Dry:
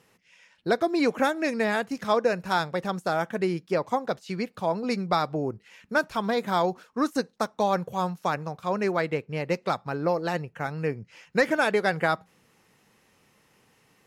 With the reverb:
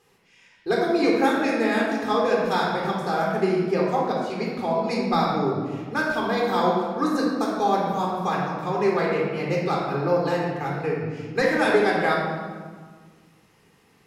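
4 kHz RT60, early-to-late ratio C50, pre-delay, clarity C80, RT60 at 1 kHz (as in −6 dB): 1.1 s, 0.0 dB, 3 ms, 2.5 dB, 1.6 s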